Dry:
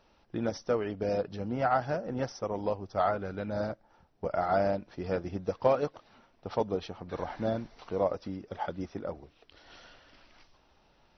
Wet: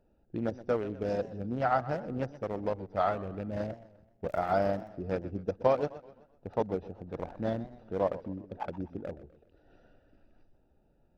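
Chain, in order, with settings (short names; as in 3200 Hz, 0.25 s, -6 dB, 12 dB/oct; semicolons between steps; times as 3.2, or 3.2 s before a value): Wiener smoothing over 41 samples; 4.28–4.88 crackle 130/s -> 31/s -45 dBFS; warbling echo 0.127 s, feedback 43%, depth 166 cents, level -16.5 dB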